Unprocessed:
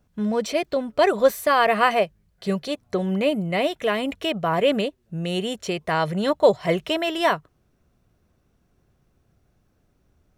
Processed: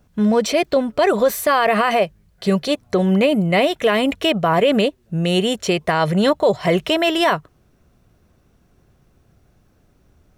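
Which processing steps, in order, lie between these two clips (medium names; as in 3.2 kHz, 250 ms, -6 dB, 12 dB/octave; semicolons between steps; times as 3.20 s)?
peak limiter -15.5 dBFS, peak gain reduction 10 dB; trim +8 dB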